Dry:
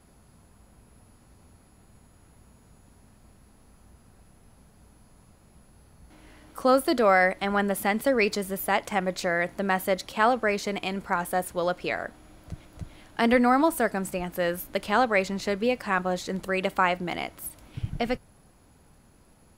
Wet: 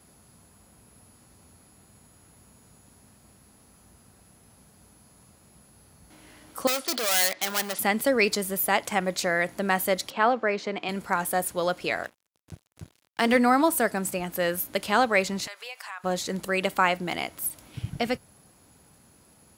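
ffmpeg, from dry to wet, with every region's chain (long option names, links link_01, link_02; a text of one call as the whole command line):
ffmpeg -i in.wav -filter_complex "[0:a]asettb=1/sr,asplit=3[link_01][link_02][link_03];[link_01]atrim=end=6.674[link_04];[link_02]atrim=start=6.67:end=7.79,asetpts=PTS-STARTPTS,afade=type=in:duration=0.004:curve=qsin,afade=type=out:start_time=1.116:duration=0.004:curve=qsin,lowpass=frequency=4800:width=0.5412,lowpass=frequency=4800:width=1.3066,volume=27dB,asoftclip=hard,volume=-27dB,aemphasis=mode=production:type=riaa[link_05];[link_03]atrim=start=7.786[link_06];[link_04][link_05]acrossfade=duration=0.004:curve1=hsin:curve2=qsin[link_07];[link_07][link_06]acrossfade=duration=0.004:curve1=qsin:curve2=hsin,asettb=1/sr,asplit=3[link_08][link_09][link_10];[link_08]atrim=end=10.104[link_11];[link_09]atrim=start=10.1:end=10.89,asetpts=PTS-STARTPTS,afade=type=in:duration=0.004:curve=qsin,afade=type=out:start_time=0.786:duration=0.004:curve=qsin,highpass=200,lowpass=5800,aemphasis=mode=reproduction:type=75kf[link_12];[link_10]atrim=start=10.886[link_13];[link_11][link_12]acrossfade=duration=0.004:curve1=hsin:curve2=qsin[link_14];[link_14][link_13]acrossfade=duration=0.004:curve1=qsin:curve2=hsin,asettb=1/sr,asplit=3[link_15][link_16][link_17];[link_15]atrim=end=12.034[link_18];[link_16]atrim=start=12.03:end=13.37,asetpts=PTS-STARTPTS,afade=type=in:duration=0.004:curve=qsin,afade=type=out:start_time=1.336:duration=0.004:curve=qsin,equalizer=frequency=13000:width=2.3:gain=-6.5,bandreject=frequency=60:width_type=h:width=6,bandreject=frequency=120:width_type=h:width=6,bandreject=frequency=180:width_type=h:width=6,bandreject=frequency=240:width_type=h:width=6,bandreject=frequency=300:width_type=h:width=6,bandreject=frequency=360:width_type=h:width=6,bandreject=frequency=420:width_type=h:width=6,bandreject=frequency=480:width_type=h:width=6,bandreject=frequency=540:width_type=h:width=6,bandreject=frequency=600:width_type=h:width=6,aeval=exprs='sgn(val(0))*max(abs(val(0))-0.00668,0)':channel_layout=same[link_19];[link_17]atrim=start=13.366[link_20];[link_18][link_19]acrossfade=duration=0.004:curve1=hsin:curve2=qsin[link_21];[link_21][link_20]acrossfade=duration=0.004:curve1=qsin:curve2=hsin,asettb=1/sr,asplit=3[link_22][link_23][link_24];[link_22]atrim=end=15.474[link_25];[link_23]atrim=start=15.47:end=16.04,asetpts=PTS-STARTPTS,afade=type=in:duration=0.004:curve=qsin,afade=type=out:start_time=0.566:duration=0.004:curve=qsin,highpass=frequency=780:width=0.5412,highpass=frequency=780:width=1.3066,acompressor=threshold=-39dB:ratio=3:attack=3.2:release=140:knee=1:detection=peak[link_26];[link_24]atrim=start=16.036[link_27];[link_25][link_26]acrossfade=duration=0.004:curve1=hsin:curve2=qsin[link_28];[link_28][link_27]acrossfade=duration=0.004:curve1=qsin:curve2=hsin,highpass=78,highshelf=frequency=3700:gain=8" out.wav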